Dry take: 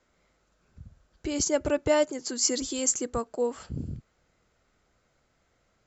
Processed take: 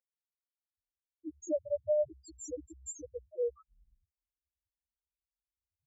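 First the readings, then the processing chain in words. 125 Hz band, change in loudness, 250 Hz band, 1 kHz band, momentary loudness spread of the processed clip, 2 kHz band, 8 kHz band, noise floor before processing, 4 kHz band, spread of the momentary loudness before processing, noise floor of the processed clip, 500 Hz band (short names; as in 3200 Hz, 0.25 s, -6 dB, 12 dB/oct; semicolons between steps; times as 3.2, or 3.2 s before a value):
under -20 dB, -9.0 dB, -15.0 dB, under -30 dB, 15 LU, under -40 dB, n/a, -71 dBFS, under -30 dB, 13 LU, under -85 dBFS, -6.0 dB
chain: octaver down 2 oct, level +4 dB; in parallel at -6.5 dB: soft clip -27 dBFS, distortion -7 dB; on the sum: loudest bins only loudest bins 1; high-pass sweep 1500 Hz -> 210 Hz, 0.07–1.93; gain -3.5 dB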